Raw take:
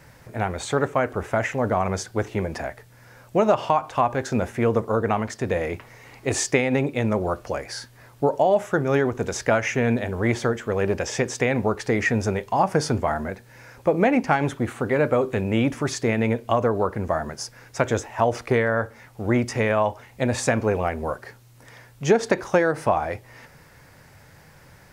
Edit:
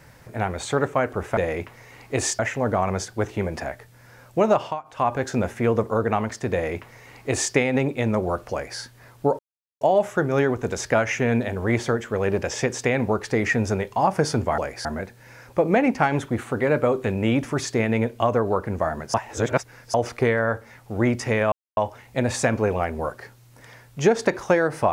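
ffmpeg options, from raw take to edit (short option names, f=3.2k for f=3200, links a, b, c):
-filter_complex "[0:a]asplit=11[a][b][c][d][e][f][g][h][i][j][k];[a]atrim=end=1.372[l];[b]atrim=start=5.498:end=6.522[m];[c]atrim=start=1.368:end=3.8,asetpts=PTS-STARTPTS,afade=t=out:st=2.172:d=0.26:silence=0.112202[n];[d]atrim=start=3.8:end=3.81,asetpts=PTS-STARTPTS,volume=-19dB[o];[e]atrim=start=3.81:end=8.37,asetpts=PTS-STARTPTS,afade=t=in:d=0.26:silence=0.112202,afade=t=out:st=4.556:d=0.004:c=hsin,apad=pad_dur=0.42[p];[f]atrim=start=8.37:end=13.142,asetpts=PTS-STARTPTS,afade=t=in:d=0.004:c=hsin[q];[g]atrim=start=7.498:end=7.772[r];[h]atrim=start=13.138:end=17.432[s];[i]atrim=start=17.428:end=18.232,asetpts=PTS-STARTPTS,areverse[t];[j]atrim=start=18.228:end=19.81,asetpts=PTS-STARTPTS,afade=t=out:st=1.578:d=0.004:c=hsin,apad=pad_dur=0.25[u];[k]atrim=start=19.81,asetpts=PTS-STARTPTS,afade=t=in:d=0.004:c=hsin[v];[l][m]acrossfade=d=0.004:c1=hsin:c2=hsin[w];[n][o][p][q]concat=n=4:v=0:a=1[x];[w][x]acrossfade=d=0.004:c1=hsin:c2=hsin[y];[y][r]acrossfade=d=0.004:c1=hsin:c2=hsin[z];[z][s]acrossfade=d=0.004:c1=hsin:c2=hsin[aa];[aa][t]acrossfade=d=0.004:c1=hsin:c2=hsin[ab];[u][v]concat=n=2:v=0:a=1[ac];[ab][ac]acrossfade=d=0.004:c1=hsin:c2=hsin"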